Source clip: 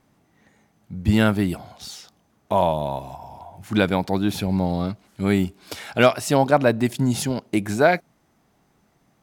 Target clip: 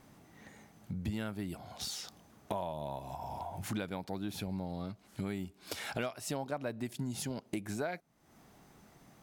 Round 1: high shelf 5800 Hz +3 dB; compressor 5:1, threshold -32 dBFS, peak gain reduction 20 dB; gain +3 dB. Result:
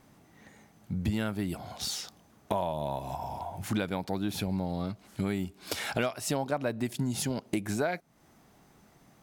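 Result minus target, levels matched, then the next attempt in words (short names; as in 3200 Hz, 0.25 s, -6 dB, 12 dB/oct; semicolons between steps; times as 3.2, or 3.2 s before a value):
compressor: peak gain reduction -7 dB
high shelf 5800 Hz +3 dB; compressor 5:1, threshold -40.5 dBFS, peak gain reduction 26.5 dB; gain +3 dB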